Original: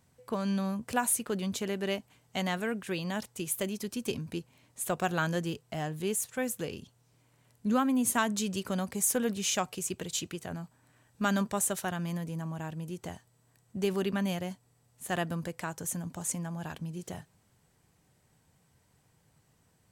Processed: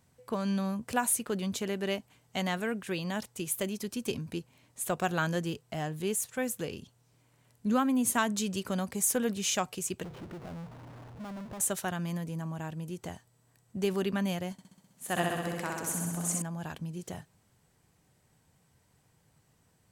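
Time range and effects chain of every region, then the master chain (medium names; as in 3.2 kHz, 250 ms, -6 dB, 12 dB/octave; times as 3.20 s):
10.04–11.60 s: low-pass 1.1 kHz 24 dB/octave + compression 10:1, threshold -43 dBFS + power-law waveshaper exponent 0.35
14.52–16.42 s: high-pass 140 Hz 6 dB/octave + flutter echo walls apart 11 m, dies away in 1.4 s
whole clip: none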